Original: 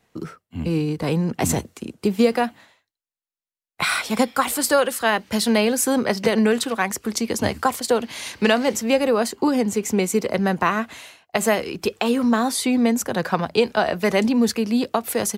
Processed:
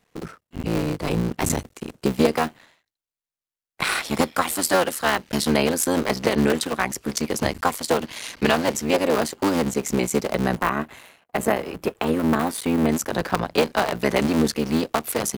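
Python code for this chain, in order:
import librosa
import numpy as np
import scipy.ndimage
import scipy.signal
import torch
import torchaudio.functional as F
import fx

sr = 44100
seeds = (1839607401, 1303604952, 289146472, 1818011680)

y = fx.cycle_switch(x, sr, every=3, mode='muted')
y = fx.peak_eq(y, sr, hz=5300.0, db=-8.5, octaves=1.9, at=(10.58, 12.89))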